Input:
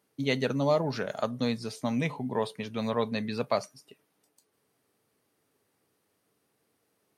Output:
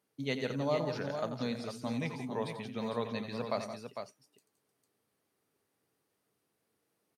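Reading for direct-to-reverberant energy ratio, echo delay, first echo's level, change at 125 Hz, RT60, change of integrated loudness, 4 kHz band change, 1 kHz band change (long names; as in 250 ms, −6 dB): no reverb audible, 88 ms, −10.5 dB, −5.5 dB, no reverb audible, −6.0 dB, −5.5 dB, −5.5 dB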